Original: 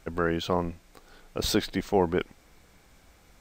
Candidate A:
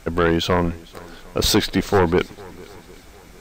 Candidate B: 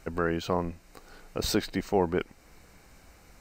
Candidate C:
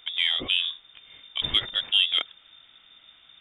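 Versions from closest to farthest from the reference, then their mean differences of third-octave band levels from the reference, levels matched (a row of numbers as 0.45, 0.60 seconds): B, A, C; 2.0, 4.5, 14.0 decibels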